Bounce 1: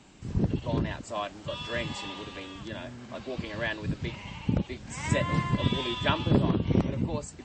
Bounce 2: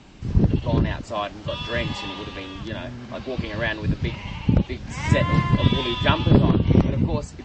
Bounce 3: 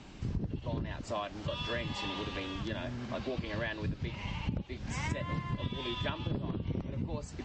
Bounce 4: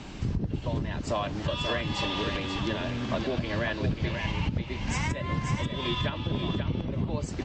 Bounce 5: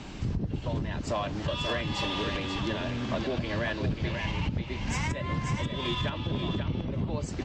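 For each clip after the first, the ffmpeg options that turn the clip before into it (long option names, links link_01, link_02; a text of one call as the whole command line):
ffmpeg -i in.wav -af "lowpass=frequency=6200:width=0.5412,lowpass=frequency=6200:width=1.3066,lowshelf=frequency=84:gain=8.5,volume=6dB" out.wav
ffmpeg -i in.wav -af "acompressor=threshold=-29dB:ratio=8,volume=-3dB" out.wav
ffmpeg -i in.wav -af "alimiter=level_in=4dB:limit=-24dB:level=0:latency=1:release=487,volume=-4dB,aecho=1:1:537:0.473,volume=9dB" out.wav
ffmpeg -i in.wav -af "asoftclip=type=tanh:threshold=-20dB" out.wav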